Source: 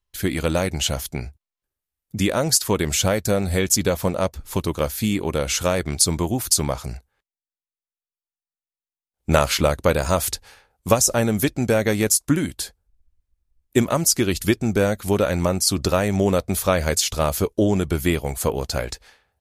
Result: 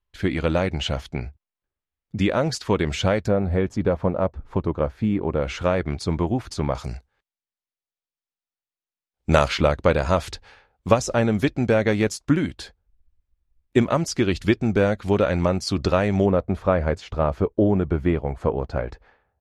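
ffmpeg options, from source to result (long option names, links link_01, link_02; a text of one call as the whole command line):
ffmpeg -i in.wav -af "asetnsamples=nb_out_samples=441:pad=0,asendcmd='3.28 lowpass f 1300;5.42 lowpass f 2200;6.75 lowpass f 5700;9.48 lowpass f 3400;16.26 lowpass f 1400',lowpass=3000" out.wav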